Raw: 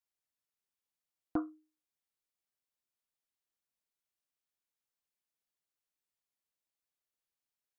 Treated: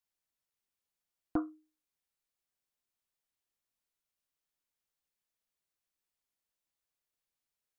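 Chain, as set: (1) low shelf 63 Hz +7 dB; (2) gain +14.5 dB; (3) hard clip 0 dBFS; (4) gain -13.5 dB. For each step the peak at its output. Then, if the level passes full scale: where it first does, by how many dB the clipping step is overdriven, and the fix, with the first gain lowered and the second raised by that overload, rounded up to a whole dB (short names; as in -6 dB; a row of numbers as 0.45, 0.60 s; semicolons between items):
-20.0, -5.5, -5.5, -19.0 dBFS; no overload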